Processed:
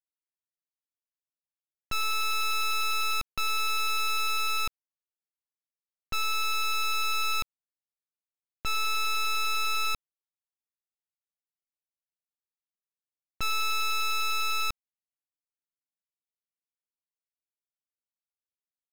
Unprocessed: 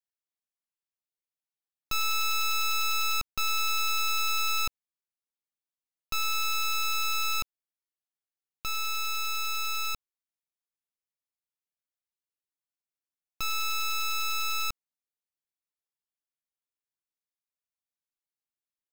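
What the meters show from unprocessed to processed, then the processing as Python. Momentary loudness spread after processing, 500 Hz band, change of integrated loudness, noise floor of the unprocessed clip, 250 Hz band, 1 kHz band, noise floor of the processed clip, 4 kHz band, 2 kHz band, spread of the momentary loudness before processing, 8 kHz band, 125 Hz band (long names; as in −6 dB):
6 LU, +4.0 dB, +0.5 dB, below −85 dBFS, can't be measured, +2.0 dB, below −85 dBFS, 0.0 dB, +1.5 dB, 8 LU, −2.5 dB, +1.5 dB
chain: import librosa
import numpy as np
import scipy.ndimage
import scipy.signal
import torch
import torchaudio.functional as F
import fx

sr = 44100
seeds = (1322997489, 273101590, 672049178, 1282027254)

y = scipy.signal.sosfilt(scipy.signal.butter(4, 3300.0, 'lowpass', fs=sr, output='sos'), x)
y = fx.env_lowpass(y, sr, base_hz=890.0, full_db=-26.0)
y = fx.leveller(y, sr, passes=5)
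y = fx.rider(y, sr, range_db=10, speed_s=2.0)
y = y * 10.0 ** (-1.0 / 20.0)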